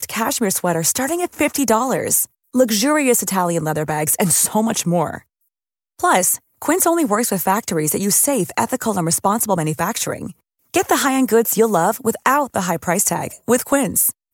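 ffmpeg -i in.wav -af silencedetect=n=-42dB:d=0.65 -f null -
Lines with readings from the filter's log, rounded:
silence_start: 5.22
silence_end: 5.99 | silence_duration: 0.77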